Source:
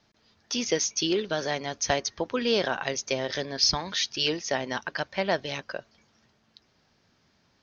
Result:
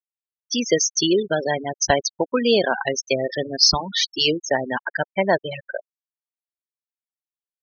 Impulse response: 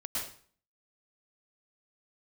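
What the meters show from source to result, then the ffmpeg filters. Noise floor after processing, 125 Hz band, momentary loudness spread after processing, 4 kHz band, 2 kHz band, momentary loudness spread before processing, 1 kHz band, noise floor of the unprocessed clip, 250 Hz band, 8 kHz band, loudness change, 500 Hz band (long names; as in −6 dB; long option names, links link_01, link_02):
below −85 dBFS, +6.0 dB, 10 LU, +6.0 dB, +6.0 dB, 9 LU, +6.5 dB, −68 dBFS, +7.5 dB, can't be measured, +7.0 dB, +7.5 dB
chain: -af "aeval=exprs='0.447*(cos(1*acos(clip(val(0)/0.447,-1,1)))-cos(1*PI/2))+0.0355*(cos(3*acos(clip(val(0)/0.447,-1,1)))-cos(3*PI/2))+0.00316*(cos(6*acos(clip(val(0)/0.447,-1,1)))-cos(6*PI/2))':channel_layout=same,acontrast=38,afftfilt=real='re*gte(hypot(re,im),0.1)':imag='im*gte(hypot(re,im),0.1)':win_size=1024:overlap=0.75,volume=4.5dB"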